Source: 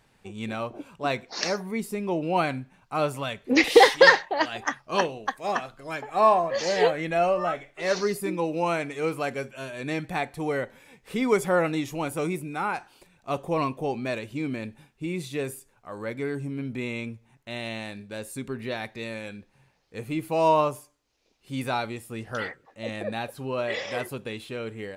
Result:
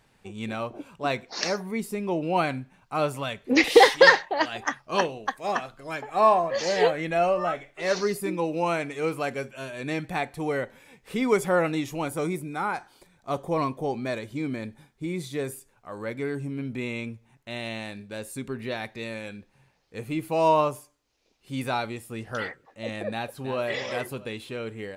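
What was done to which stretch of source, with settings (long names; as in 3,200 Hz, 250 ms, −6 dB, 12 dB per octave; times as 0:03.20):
0:12.06–0:15.52: notch filter 2,700 Hz, Q 5.2
0:23.12–0:23.61: delay throw 320 ms, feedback 25%, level −9.5 dB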